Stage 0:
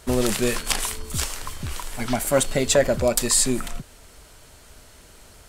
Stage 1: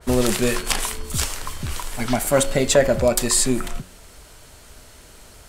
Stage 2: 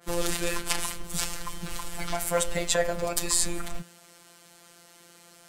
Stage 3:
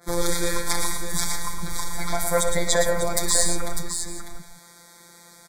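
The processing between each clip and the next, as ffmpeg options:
ffmpeg -i in.wav -af "bandreject=frequency=91.36:width_type=h:width=4,bandreject=frequency=182.72:width_type=h:width=4,bandreject=frequency=274.08:width_type=h:width=4,bandreject=frequency=365.44:width_type=h:width=4,bandreject=frequency=456.8:width_type=h:width=4,bandreject=frequency=548.16:width_type=h:width=4,bandreject=frequency=639.52:width_type=h:width=4,bandreject=frequency=730.88:width_type=h:width=4,bandreject=frequency=822.24:width_type=h:width=4,bandreject=frequency=913.6:width_type=h:width=4,bandreject=frequency=1004.96:width_type=h:width=4,bandreject=frequency=1096.32:width_type=h:width=4,bandreject=frequency=1187.68:width_type=h:width=4,bandreject=frequency=1279.04:width_type=h:width=4,bandreject=frequency=1370.4:width_type=h:width=4,bandreject=frequency=1461.76:width_type=h:width=4,bandreject=frequency=1553.12:width_type=h:width=4,bandreject=frequency=1644.48:width_type=h:width=4,bandreject=frequency=1735.84:width_type=h:width=4,bandreject=frequency=1827.2:width_type=h:width=4,bandreject=frequency=1918.56:width_type=h:width=4,bandreject=frequency=2009.92:width_type=h:width=4,bandreject=frequency=2101.28:width_type=h:width=4,bandreject=frequency=2192.64:width_type=h:width=4,bandreject=frequency=2284:width_type=h:width=4,bandreject=frequency=2375.36:width_type=h:width=4,bandreject=frequency=2466.72:width_type=h:width=4,bandreject=frequency=2558.08:width_type=h:width=4,bandreject=frequency=2649.44:width_type=h:width=4,bandreject=frequency=2740.8:width_type=h:width=4,bandreject=frequency=2832.16:width_type=h:width=4,bandreject=frequency=2923.52:width_type=h:width=4,bandreject=frequency=3014.88:width_type=h:width=4,bandreject=frequency=3106.24:width_type=h:width=4,bandreject=frequency=3197.6:width_type=h:width=4,bandreject=frequency=3288.96:width_type=h:width=4,bandreject=frequency=3380.32:width_type=h:width=4,bandreject=frequency=3471.68:width_type=h:width=4,adynamicequalizer=threshold=0.0141:dfrequency=2700:dqfactor=0.7:tfrequency=2700:tqfactor=0.7:attack=5:release=100:ratio=0.375:range=1.5:mode=cutabove:tftype=highshelf,volume=3dB" out.wav
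ffmpeg -i in.wav -filter_complex "[0:a]acrossover=split=120|490|5000[link_01][link_02][link_03][link_04];[link_01]acrusher=bits=5:mix=0:aa=0.000001[link_05];[link_02]acompressor=threshold=-31dB:ratio=6[link_06];[link_05][link_06][link_03][link_04]amix=inputs=4:normalize=0,afftfilt=real='hypot(re,im)*cos(PI*b)':imag='0':win_size=1024:overlap=0.75,volume=-2.5dB" out.wav
ffmpeg -i in.wav -filter_complex "[0:a]asplit=2[link_01][link_02];[link_02]asoftclip=type=hard:threshold=-11dB,volume=-5dB[link_03];[link_01][link_03]amix=inputs=2:normalize=0,asuperstop=centerf=2800:order=8:qfactor=2.7,aecho=1:1:63|104|114|599|765:0.224|0.119|0.447|0.398|0.112" out.wav

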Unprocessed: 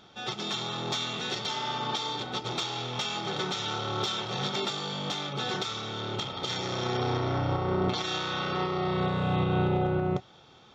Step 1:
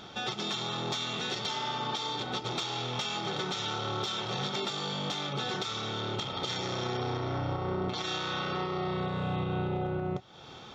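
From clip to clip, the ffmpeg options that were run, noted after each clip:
ffmpeg -i in.wav -af "acompressor=threshold=-42dB:ratio=3,volume=8dB" out.wav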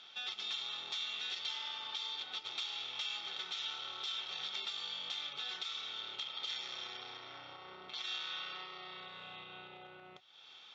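ffmpeg -i in.wav -af "bandpass=frequency=3100:width_type=q:width=1.4:csg=0,volume=-3dB" out.wav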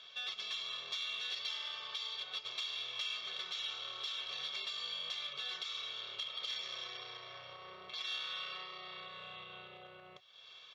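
ffmpeg -i in.wav -filter_complex "[0:a]aecho=1:1:1.8:0.91,asplit=2[link_01][link_02];[link_02]asoftclip=type=tanh:threshold=-32.5dB,volume=-9.5dB[link_03];[link_01][link_03]amix=inputs=2:normalize=0,volume=-4.5dB" out.wav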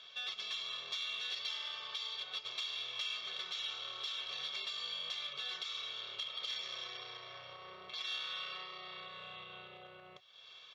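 ffmpeg -i in.wav -af anull out.wav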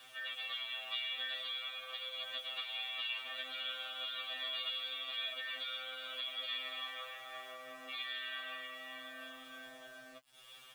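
ffmpeg -i in.wav -af "highpass=frequency=170:width_type=q:width=0.5412,highpass=frequency=170:width_type=q:width=1.307,lowpass=frequency=3200:width_type=q:width=0.5176,lowpass=frequency=3200:width_type=q:width=0.7071,lowpass=frequency=3200:width_type=q:width=1.932,afreqshift=77,aeval=exprs='val(0)*gte(abs(val(0)),0.00106)':channel_layout=same,afftfilt=real='re*2.45*eq(mod(b,6),0)':imag='im*2.45*eq(mod(b,6),0)':win_size=2048:overlap=0.75,volume=6dB" out.wav

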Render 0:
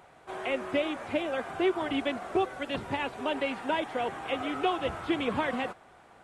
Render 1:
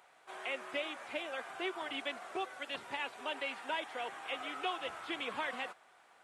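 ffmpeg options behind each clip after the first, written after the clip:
ffmpeg -i in.wav -af "highpass=frequency=1400:poles=1,volume=-2.5dB" out.wav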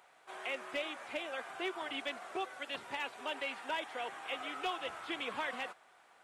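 ffmpeg -i in.wav -af "volume=29dB,asoftclip=hard,volume=-29dB" out.wav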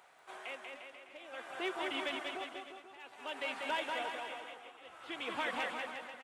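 ffmpeg -i in.wav -filter_complex "[0:a]tremolo=f=0.54:d=0.97,asplit=2[link_01][link_02];[link_02]aecho=0:1:190|351.5|488.8|605.5|704.6:0.631|0.398|0.251|0.158|0.1[link_03];[link_01][link_03]amix=inputs=2:normalize=0,volume=1dB" out.wav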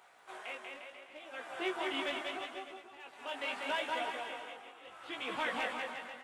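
ffmpeg -i in.wav -af "flanger=delay=15.5:depth=6:speed=0.75,volume=4dB" out.wav

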